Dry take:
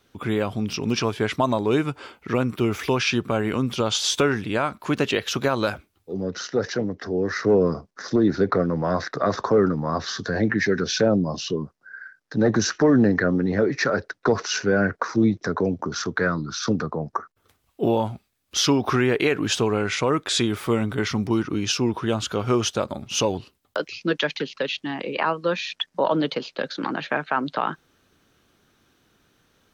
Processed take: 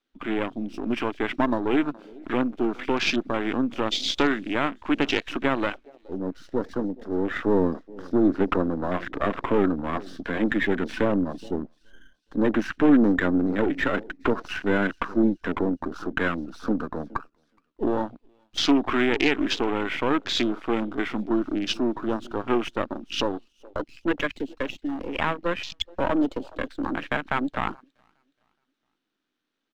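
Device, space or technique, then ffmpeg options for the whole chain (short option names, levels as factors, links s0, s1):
crystal radio: -filter_complex "[0:a]asettb=1/sr,asplit=3[s0][s1][s2];[s0]atrim=end=9.234[s3];[s1]atrim=start=9.23:end=9.97,asetpts=PTS-STARTPTS,afade=t=in:d=0.004:c=qsin,afade=t=out:st=0.736:d=0.004:c=qsin,lowpass=3000[s4];[s2]atrim=start=9.966[s5];[s3][s4]acrossfade=d=0.004:c1=hsin:c2=qsin[s6];[s6][s5]acrossfade=d=0.004:c1=qsin:c2=hsin,highpass=250,lowpass=3400,aeval=exprs='if(lt(val(0),0),0.251*val(0),val(0))':c=same,aecho=1:1:420|840|1260:0.0944|0.0368|0.0144,afwtdn=0.0178,firequalizer=gain_entry='entry(150,0);entry(280,9);entry(420,-1);entry(3600,7)':delay=0.05:min_phase=1"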